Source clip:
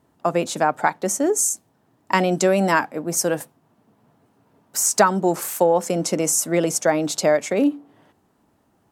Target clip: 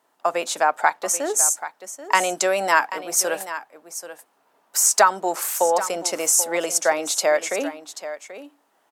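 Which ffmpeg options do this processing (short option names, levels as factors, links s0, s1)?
-af "highpass=670,aecho=1:1:784:0.224,volume=1.33"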